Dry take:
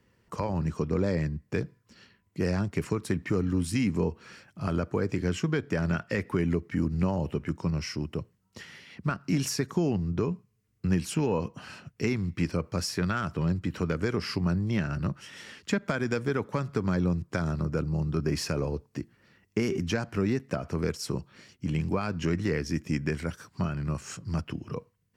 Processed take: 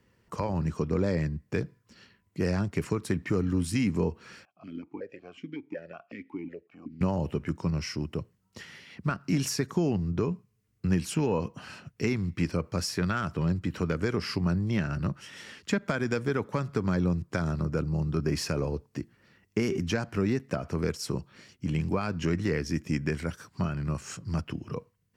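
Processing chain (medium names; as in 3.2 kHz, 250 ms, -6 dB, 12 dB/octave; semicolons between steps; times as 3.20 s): 4.45–7.01 s: stepped vowel filter 5.4 Hz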